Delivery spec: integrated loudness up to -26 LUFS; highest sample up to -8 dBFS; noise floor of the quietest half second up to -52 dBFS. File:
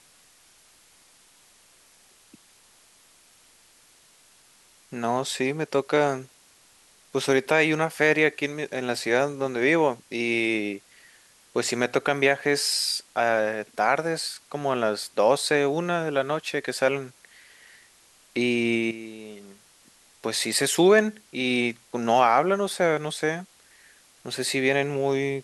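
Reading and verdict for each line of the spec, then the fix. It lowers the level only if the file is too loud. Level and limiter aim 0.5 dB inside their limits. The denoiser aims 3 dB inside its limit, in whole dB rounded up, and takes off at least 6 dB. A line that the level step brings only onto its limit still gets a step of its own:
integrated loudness -24.5 LUFS: fail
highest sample -6.0 dBFS: fail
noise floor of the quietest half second -57 dBFS: OK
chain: gain -2 dB; limiter -8.5 dBFS

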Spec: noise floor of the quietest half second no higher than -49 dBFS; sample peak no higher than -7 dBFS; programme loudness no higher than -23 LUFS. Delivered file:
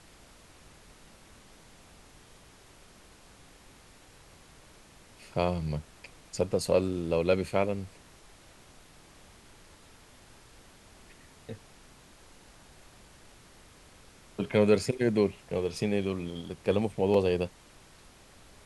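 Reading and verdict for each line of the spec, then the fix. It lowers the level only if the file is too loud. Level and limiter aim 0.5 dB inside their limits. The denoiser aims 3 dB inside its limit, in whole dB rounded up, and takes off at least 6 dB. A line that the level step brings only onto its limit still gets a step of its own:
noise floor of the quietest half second -55 dBFS: OK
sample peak -11.0 dBFS: OK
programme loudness -29.0 LUFS: OK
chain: none

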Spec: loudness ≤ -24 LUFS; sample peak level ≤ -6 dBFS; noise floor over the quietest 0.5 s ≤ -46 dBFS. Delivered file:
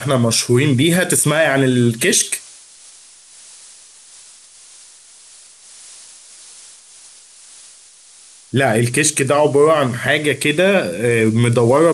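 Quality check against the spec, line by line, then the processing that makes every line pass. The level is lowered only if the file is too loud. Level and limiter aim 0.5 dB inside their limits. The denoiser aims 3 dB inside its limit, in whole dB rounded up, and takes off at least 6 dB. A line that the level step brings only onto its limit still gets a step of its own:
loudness -15.0 LUFS: fail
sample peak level -3.5 dBFS: fail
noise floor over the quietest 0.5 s -45 dBFS: fail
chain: gain -9.5 dB

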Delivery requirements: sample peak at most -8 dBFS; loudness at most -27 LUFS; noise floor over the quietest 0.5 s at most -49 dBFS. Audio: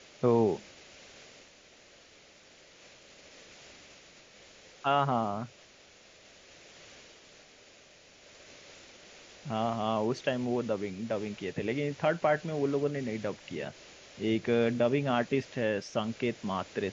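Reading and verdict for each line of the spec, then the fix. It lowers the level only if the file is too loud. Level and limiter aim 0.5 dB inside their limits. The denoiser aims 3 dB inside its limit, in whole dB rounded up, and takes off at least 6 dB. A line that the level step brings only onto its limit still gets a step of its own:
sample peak -13.5 dBFS: OK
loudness -31.0 LUFS: OK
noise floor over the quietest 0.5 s -57 dBFS: OK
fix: none

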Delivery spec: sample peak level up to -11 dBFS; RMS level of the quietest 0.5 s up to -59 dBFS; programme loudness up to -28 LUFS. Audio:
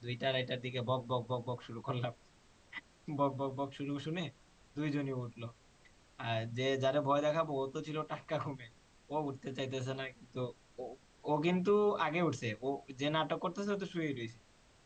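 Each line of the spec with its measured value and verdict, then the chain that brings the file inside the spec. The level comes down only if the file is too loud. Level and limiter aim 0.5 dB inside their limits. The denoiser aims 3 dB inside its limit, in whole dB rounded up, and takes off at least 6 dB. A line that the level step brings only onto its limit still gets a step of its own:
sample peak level -18.0 dBFS: OK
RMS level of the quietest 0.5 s -64 dBFS: OK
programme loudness -37.0 LUFS: OK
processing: none

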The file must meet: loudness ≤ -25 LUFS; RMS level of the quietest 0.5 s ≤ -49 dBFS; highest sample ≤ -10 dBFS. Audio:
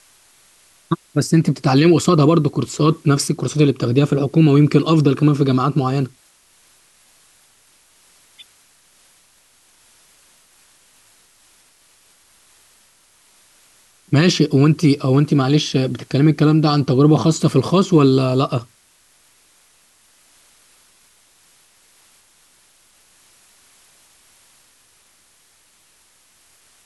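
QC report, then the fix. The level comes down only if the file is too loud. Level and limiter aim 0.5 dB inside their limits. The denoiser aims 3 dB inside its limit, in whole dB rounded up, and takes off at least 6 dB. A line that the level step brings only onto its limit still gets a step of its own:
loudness -16.0 LUFS: fail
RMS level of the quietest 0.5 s -56 dBFS: OK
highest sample -3.5 dBFS: fail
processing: gain -9.5 dB

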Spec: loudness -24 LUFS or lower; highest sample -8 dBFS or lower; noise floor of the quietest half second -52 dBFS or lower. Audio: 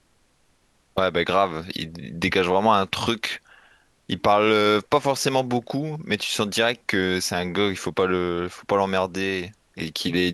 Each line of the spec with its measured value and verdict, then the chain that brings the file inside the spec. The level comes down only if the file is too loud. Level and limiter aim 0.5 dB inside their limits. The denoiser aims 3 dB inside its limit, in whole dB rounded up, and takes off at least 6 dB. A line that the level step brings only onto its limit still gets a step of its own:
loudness -23.0 LUFS: fail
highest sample -5.0 dBFS: fail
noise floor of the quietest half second -63 dBFS: OK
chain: gain -1.5 dB; limiter -8.5 dBFS

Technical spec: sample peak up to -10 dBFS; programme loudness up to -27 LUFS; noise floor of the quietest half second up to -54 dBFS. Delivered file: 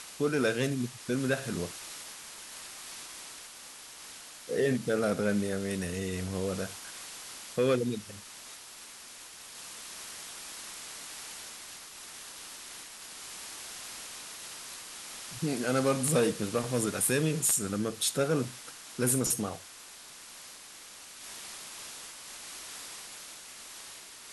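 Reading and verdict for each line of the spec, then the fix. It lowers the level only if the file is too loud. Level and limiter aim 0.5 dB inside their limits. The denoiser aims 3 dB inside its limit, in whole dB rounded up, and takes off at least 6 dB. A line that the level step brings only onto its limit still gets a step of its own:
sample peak -13.5 dBFS: OK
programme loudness -33.0 LUFS: OK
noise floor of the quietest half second -49 dBFS: fail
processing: denoiser 8 dB, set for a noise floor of -49 dBFS

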